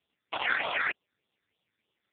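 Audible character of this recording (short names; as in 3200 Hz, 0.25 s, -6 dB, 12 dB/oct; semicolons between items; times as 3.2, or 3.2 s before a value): a quantiser's noise floor 12-bit, dither triangular; phasing stages 8, 3.3 Hz, lowest notch 800–1800 Hz; AMR-NB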